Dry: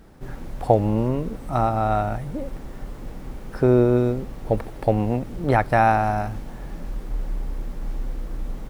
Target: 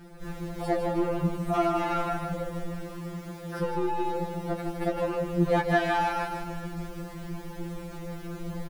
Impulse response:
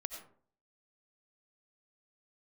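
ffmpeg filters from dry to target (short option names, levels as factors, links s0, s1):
-filter_complex "[0:a]asettb=1/sr,asplit=3[s0][s1][s2];[s0]atrim=end=2.764[s3];[s1]atrim=start=2.76:end=4.69,asetpts=PTS-STARTPTS,afade=t=in:d=0.004:c=qsin,afade=t=out:st=1.926:d=0.004:c=qsin,highpass=63[s4];[s2]atrim=start=4.686[s5];[s3][s4]acrossfade=d=0.004:c1=hsin:c2=qsin[s6];[s6][s5]acrossfade=d=0.004:c1=qsin:c2=hsin,alimiter=limit=0.211:level=0:latency=1:release=129,volume=8.41,asoftclip=hard,volume=0.119,aecho=1:1:155|310|465|620|775|930:0.447|0.223|0.112|0.0558|0.0279|0.014,afftfilt=real='re*2.83*eq(mod(b,8),0)':imag='im*2.83*eq(mod(b,8),0)':win_size=2048:overlap=0.75,volume=1.5"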